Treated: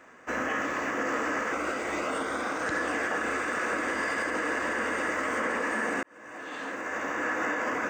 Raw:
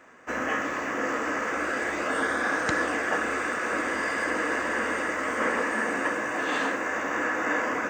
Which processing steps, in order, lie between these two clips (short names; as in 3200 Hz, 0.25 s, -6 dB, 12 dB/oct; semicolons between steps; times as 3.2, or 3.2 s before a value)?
limiter -20.5 dBFS, peak gain reduction 9 dB; 1.53–2.63 notch 1700 Hz, Q 6.2; 6.03–7.33 fade in